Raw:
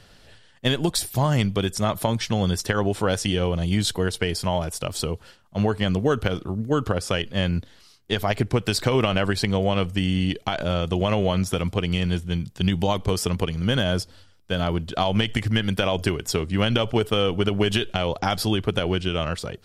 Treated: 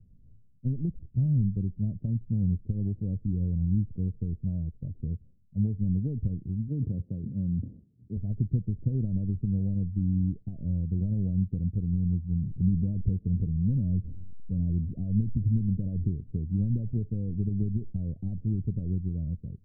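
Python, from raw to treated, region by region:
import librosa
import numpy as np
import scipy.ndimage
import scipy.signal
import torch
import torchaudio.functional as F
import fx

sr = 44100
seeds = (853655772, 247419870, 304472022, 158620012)

y = fx.chain(x, sr, fx.highpass(hz=110.0, slope=12),
    fx.sustainer(db_per_s=53.0), at=(6.68, 8.17))
y = fx.chain(y, sr, fx.zero_step(step_db=-26.5),
    fx.cheby1_lowpass(hz=550.0, order=2),
    fx.peak_eq(hz=400.0, db=-2.5, octaves=0.38), at=(12.41, 16.11))
y = scipy.signal.sosfilt(scipy.signal.cheby2(4, 80, 1500.0, 'lowpass', fs=sr, output='sos'), y)
y = y + 0.33 * np.pad(y, (int(1.6 * sr / 1000.0), 0))[:len(y)]
y = y * 10.0 ** (-3.0 / 20.0)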